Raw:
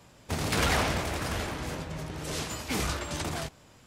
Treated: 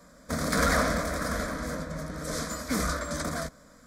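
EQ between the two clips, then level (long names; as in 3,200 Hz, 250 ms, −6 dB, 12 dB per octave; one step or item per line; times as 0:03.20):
high-shelf EQ 6,800 Hz −4.5 dB
phaser with its sweep stopped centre 560 Hz, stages 8
+5.5 dB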